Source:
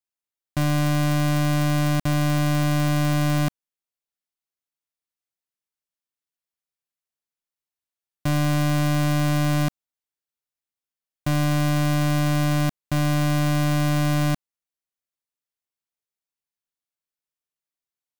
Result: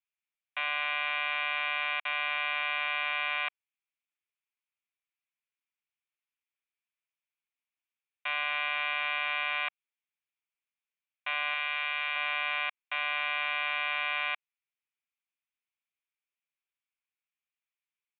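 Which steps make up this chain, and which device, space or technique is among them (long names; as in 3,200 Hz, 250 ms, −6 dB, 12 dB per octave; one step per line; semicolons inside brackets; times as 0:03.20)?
0:11.54–0:12.16: high-pass filter 940 Hz 6 dB per octave
musical greeting card (downsampling to 8,000 Hz; high-pass filter 880 Hz 24 dB per octave; parametric band 2,400 Hz +11.5 dB 0.42 octaves)
level −2.5 dB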